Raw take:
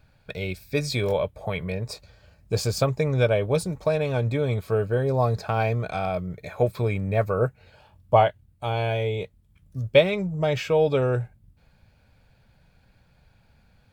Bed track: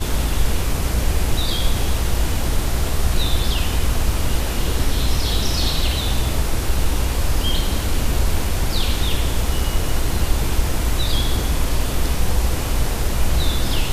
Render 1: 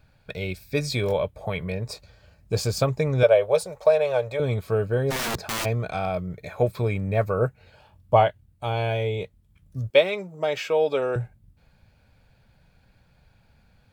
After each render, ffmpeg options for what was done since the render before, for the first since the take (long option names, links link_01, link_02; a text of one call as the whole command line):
ffmpeg -i in.wav -filter_complex "[0:a]asettb=1/sr,asplit=3[link_01][link_02][link_03];[link_01]atrim=end=3.234[link_04];[link_02]atrim=start=3.23:end=4.4,asetpts=PTS-STARTPTS,afade=type=in:duration=0.004:curve=qsin,afade=type=out:start_time=1.166:duration=0.004:curve=qsin,lowshelf=frequency=390:width_type=q:width=3:gain=-11.5[link_05];[link_03]atrim=start=4.396[link_06];[link_04][link_05]acrossfade=duration=0.004:curve1=hsin:curve2=qsin[link_07];[link_07][link_06]acrossfade=duration=0.004:curve1=qsin:curve2=hsin,asplit=3[link_08][link_09][link_10];[link_08]afade=type=out:start_time=5.1:duration=0.02[link_11];[link_09]aeval=exprs='(mod(14.1*val(0)+1,2)-1)/14.1':channel_layout=same,afade=type=in:start_time=5.1:duration=0.02,afade=type=out:start_time=5.64:duration=0.02[link_12];[link_10]afade=type=in:start_time=5.64:duration=0.02[link_13];[link_11][link_12][link_13]amix=inputs=3:normalize=0,asettb=1/sr,asplit=3[link_14][link_15][link_16];[link_14]atrim=end=9.904[link_17];[link_15]atrim=start=9.9:end=11.16,asetpts=PTS-STARTPTS,afade=type=in:duration=0.004:curve=qsin,afade=type=out:start_time=1.256:duration=0.004:curve=qsin,highpass=350[link_18];[link_16]atrim=start=11.156[link_19];[link_17][link_18]acrossfade=duration=0.004:curve1=hsin:curve2=qsin[link_20];[link_20][link_19]acrossfade=duration=0.004:curve1=qsin:curve2=hsin" out.wav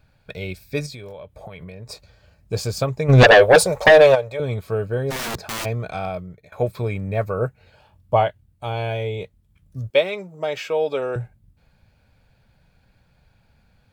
ffmpeg -i in.wav -filter_complex "[0:a]asettb=1/sr,asplit=3[link_01][link_02][link_03];[link_01]atrim=end=0.864[link_04];[link_02]atrim=start=0.86:end=1.91,asetpts=PTS-STARTPTS,afade=type=in:duration=0.004:curve=qsin,afade=type=out:start_time=1.046:duration=0.004:curve=qsin,acompressor=threshold=-33dB:ratio=16:attack=3.2:release=140:knee=1:detection=peak[link_05];[link_03]atrim=start=1.906[link_06];[link_04][link_05]acrossfade=duration=0.004:curve1=hsin:curve2=qsin[link_07];[link_07][link_06]acrossfade=duration=0.004:curve1=qsin:curve2=hsin,asplit=3[link_08][link_09][link_10];[link_08]afade=type=out:start_time=3.08:duration=0.02[link_11];[link_09]aeval=exprs='0.531*sin(PI/2*3.55*val(0)/0.531)':channel_layout=same,afade=type=in:start_time=3.08:duration=0.02,afade=type=out:start_time=4.14:duration=0.02[link_12];[link_10]afade=type=in:start_time=4.14:duration=0.02[link_13];[link_11][link_12][link_13]amix=inputs=3:normalize=0,asplit=2[link_14][link_15];[link_14]atrim=end=6.52,asetpts=PTS-STARTPTS,afade=type=out:start_time=6.06:duration=0.46:silence=0.112202[link_16];[link_15]atrim=start=6.52,asetpts=PTS-STARTPTS,afade=type=in:duration=0.004:curve=hsin:silence=0.112202[link_17];[link_16][link_17]concat=n=2:v=0:a=1" out.wav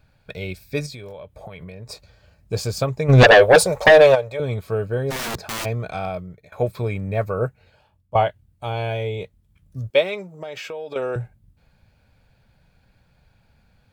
ffmpeg -i in.wav -filter_complex "[0:a]asettb=1/sr,asplit=3[link_01][link_02][link_03];[link_01]atrim=end=10.304[link_04];[link_02]atrim=start=10.3:end=10.96,asetpts=PTS-STARTPTS,afade=type=in:duration=0.004:curve=qsin,afade=type=out:start_time=0.656:duration=0.004:curve=qsin,acompressor=threshold=-29dB:ratio=6:attack=3.2:release=140:knee=1:detection=peak[link_05];[link_03]atrim=start=10.956[link_06];[link_04][link_05]acrossfade=duration=0.004:curve1=hsin:curve2=qsin[link_07];[link_07][link_06]acrossfade=duration=0.004:curve1=qsin:curve2=hsin,asplit=2[link_08][link_09];[link_08]atrim=end=8.15,asetpts=PTS-STARTPTS,afade=type=out:start_time=7.44:duration=0.71:silence=0.177828[link_10];[link_09]atrim=start=8.15,asetpts=PTS-STARTPTS,afade=type=in:duration=0.004:curve=hsin:silence=0.177828[link_11];[link_10][link_11]concat=n=2:v=0:a=1" out.wav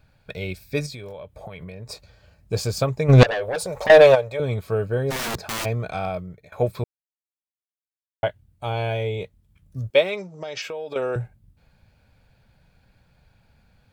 ffmpeg -i in.wav -filter_complex "[0:a]asettb=1/sr,asplit=3[link_01][link_02][link_03];[link_01]atrim=end=3.234[link_04];[link_02]atrim=start=3.23:end=3.9,asetpts=PTS-STARTPTS,afade=type=in:duration=0.004:curve=qsin,afade=type=out:start_time=0.666:duration=0.004:curve=qsin,acompressor=threshold=-25dB:ratio=6:attack=3.2:release=140:knee=1:detection=peak[link_05];[link_03]atrim=start=3.896[link_06];[link_04][link_05]acrossfade=duration=0.004:curve1=hsin:curve2=qsin[link_07];[link_07][link_06]acrossfade=duration=0.004:curve1=qsin:curve2=hsin,asettb=1/sr,asplit=3[link_08][link_09][link_10];[link_08]atrim=end=10.174[link_11];[link_09]atrim=start=10.17:end=10.62,asetpts=PTS-STARTPTS,afade=type=in:duration=0.004:curve=qsin,afade=type=out:start_time=0.446:duration=0.004:curve=qsin,lowpass=frequency=5600:width_type=q:width=3.6[link_12];[link_10]atrim=start=10.616[link_13];[link_11][link_12]acrossfade=duration=0.004:curve1=hsin:curve2=qsin[link_14];[link_14][link_13]acrossfade=duration=0.004:curve1=qsin:curve2=hsin,asplit=3[link_15][link_16][link_17];[link_15]atrim=end=6.84,asetpts=PTS-STARTPTS,afade=type=out:start_time=6.836:duration=0.004:curve=hsin[link_18];[link_16]atrim=start=6.84:end=8.23,asetpts=PTS-STARTPTS,volume=0[link_19];[link_17]atrim=start=8.23,asetpts=PTS-STARTPTS,afade=type=in:duration=0.004:curve=hsin[link_20];[link_18][link_19][link_20]concat=n=3:v=0:a=1" out.wav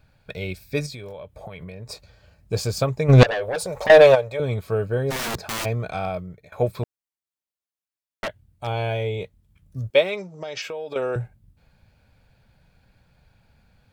ffmpeg -i in.wav -filter_complex "[0:a]asettb=1/sr,asplit=3[link_01][link_02][link_03];[link_01]atrim=end=6.834[link_04];[link_02]atrim=start=6.83:end=8.67,asetpts=PTS-STARTPTS,afade=type=in:duration=0.004:curve=qsin,afade=type=out:start_time=1.836:duration=0.004:curve=qsin,aeval=exprs='0.0841*(abs(mod(val(0)/0.0841+3,4)-2)-1)':channel_layout=same[link_05];[link_03]atrim=start=8.666[link_06];[link_04][link_05]acrossfade=duration=0.004:curve1=hsin:curve2=qsin[link_07];[link_07][link_06]acrossfade=duration=0.004:curve1=qsin:curve2=hsin" out.wav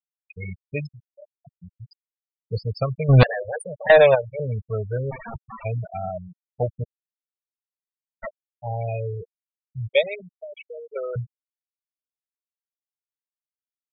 ffmpeg -i in.wav -af "equalizer=frequency=340:width_type=o:width=0.89:gain=-8,afftfilt=real='re*gte(hypot(re,im),0.112)':imag='im*gte(hypot(re,im),0.112)':win_size=1024:overlap=0.75" out.wav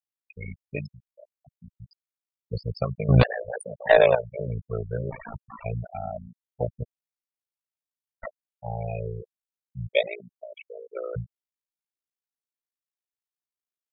ffmpeg -i in.wav -af "tremolo=f=56:d=0.857" out.wav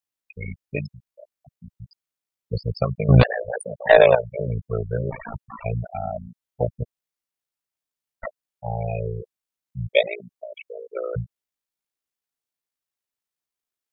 ffmpeg -i in.wav -af "volume=4.5dB,alimiter=limit=-2dB:level=0:latency=1" out.wav